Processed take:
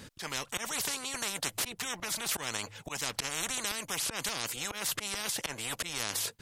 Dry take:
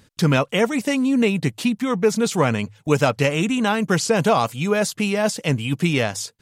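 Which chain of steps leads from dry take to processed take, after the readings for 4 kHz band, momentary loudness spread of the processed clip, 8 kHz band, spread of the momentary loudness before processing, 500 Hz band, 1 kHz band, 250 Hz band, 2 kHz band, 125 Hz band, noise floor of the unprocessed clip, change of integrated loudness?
-5.0 dB, 4 LU, -2.0 dB, 4 LU, -24.0 dB, -15.5 dB, -26.5 dB, -11.5 dB, -26.0 dB, -57 dBFS, -13.0 dB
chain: random-step tremolo; auto swell 0.194 s; spectral compressor 10:1; gain -9 dB

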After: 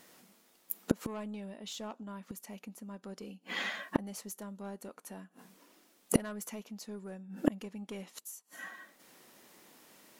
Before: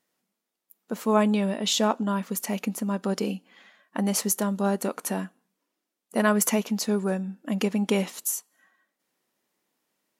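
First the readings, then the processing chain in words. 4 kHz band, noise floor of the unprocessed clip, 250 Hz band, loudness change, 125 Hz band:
-13.0 dB, -84 dBFS, -12.0 dB, -13.0 dB, n/a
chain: soft clip -18 dBFS, distortion -15 dB; flipped gate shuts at -28 dBFS, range -35 dB; gain +18 dB

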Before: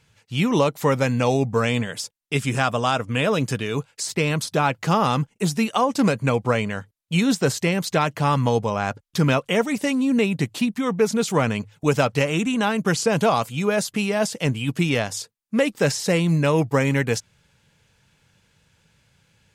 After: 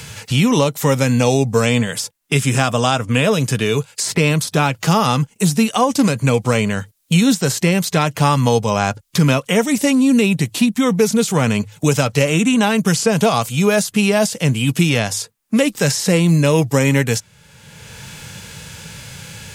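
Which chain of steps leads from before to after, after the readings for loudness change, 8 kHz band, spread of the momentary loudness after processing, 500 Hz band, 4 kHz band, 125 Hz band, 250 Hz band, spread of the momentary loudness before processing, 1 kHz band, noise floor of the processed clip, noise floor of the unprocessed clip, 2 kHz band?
+5.5 dB, +9.0 dB, 8 LU, +4.0 dB, +7.0 dB, +7.0 dB, +6.5 dB, 6 LU, +3.5 dB, -53 dBFS, -66 dBFS, +4.5 dB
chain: high shelf 4200 Hz +11.5 dB; harmonic-percussive split harmonic +8 dB; three-band squash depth 70%; gain -1.5 dB

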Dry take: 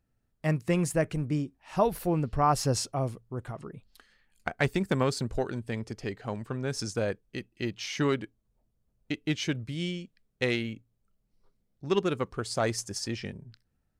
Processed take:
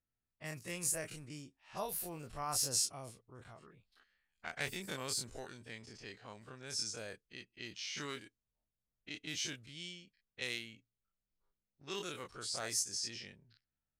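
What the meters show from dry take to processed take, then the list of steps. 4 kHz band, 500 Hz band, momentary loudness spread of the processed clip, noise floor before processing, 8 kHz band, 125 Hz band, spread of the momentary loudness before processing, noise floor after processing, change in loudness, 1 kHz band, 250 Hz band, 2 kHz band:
-3.0 dB, -17.0 dB, 18 LU, -76 dBFS, +1.0 dB, -20.0 dB, 12 LU, under -85 dBFS, -9.0 dB, -14.5 dB, -19.5 dB, -8.5 dB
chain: spectral dilation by 60 ms; low-pass opened by the level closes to 2100 Hz, open at -21.5 dBFS; pre-emphasis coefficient 0.9; gain -2.5 dB

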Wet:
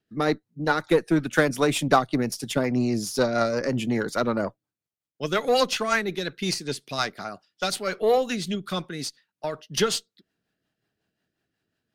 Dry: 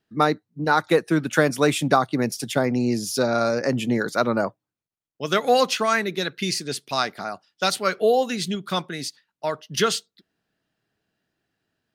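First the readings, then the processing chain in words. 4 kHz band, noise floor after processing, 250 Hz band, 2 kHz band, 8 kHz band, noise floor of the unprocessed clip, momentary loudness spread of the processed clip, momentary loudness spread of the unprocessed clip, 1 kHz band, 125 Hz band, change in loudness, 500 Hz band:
-2.5 dB, under -85 dBFS, -1.5 dB, -2.5 dB, -2.0 dB, under -85 dBFS, 11 LU, 10 LU, -4.0 dB, -2.0 dB, -2.5 dB, -2.0 dB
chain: rotary speaker horn 5.5 Hz; added harmonics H 8 -28 dB, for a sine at -5 dBFS

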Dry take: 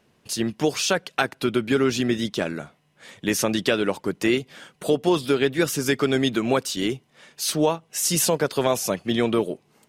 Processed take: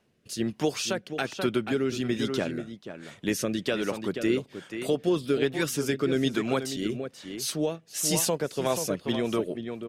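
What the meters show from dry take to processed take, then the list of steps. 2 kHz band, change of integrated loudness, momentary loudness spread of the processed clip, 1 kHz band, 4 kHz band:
-6.5 dB, -5.0 dB, 8 LU, -7.5 dB, -6.0 dB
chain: outdoor echo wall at 83 m, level -8 dB; rotary speaker horn 1.2 Hz, later 5 Hz, at 8.43; gain -3.5 dB

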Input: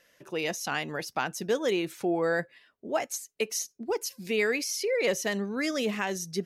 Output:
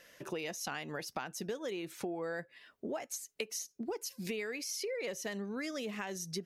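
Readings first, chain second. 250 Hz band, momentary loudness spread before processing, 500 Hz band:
-8.5 dB, 6 LU, -10.5 dB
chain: compressor 8:1, threshold -41 dBFS, peak gain reduction 18.5 dB; gain +4.5 dB

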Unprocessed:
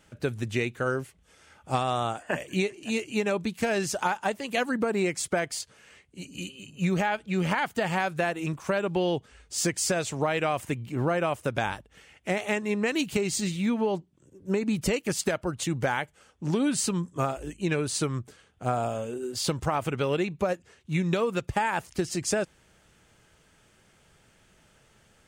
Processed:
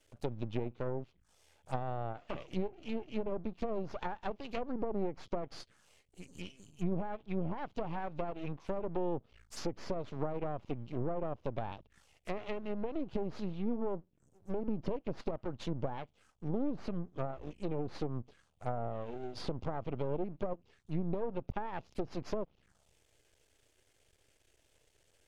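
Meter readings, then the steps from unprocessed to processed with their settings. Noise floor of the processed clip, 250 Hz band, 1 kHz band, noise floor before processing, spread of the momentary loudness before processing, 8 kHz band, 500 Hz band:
-72 dBFS, -9.5 dB, -11.5 dB, -62 dBFS, 7 LU, -27.5 dB, -9.5 dB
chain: envelope phaser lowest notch 170 Hz, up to 1700 Hz, full sweep at -31 dBFS; half-wave rectifier; treble ducked by the level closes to 880 Hz, closed at -26.5 dBFS; gain -3.5 dB

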